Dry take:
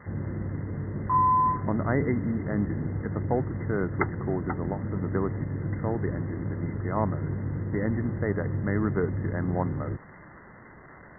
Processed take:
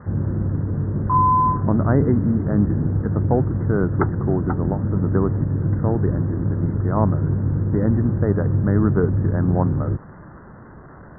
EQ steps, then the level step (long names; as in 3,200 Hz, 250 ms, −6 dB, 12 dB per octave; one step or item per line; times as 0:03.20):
Butterworth low-pass 1,600 Hz 48 dB per octave
low-shelf EQ 280 Hz +7 dB
+4.5 dB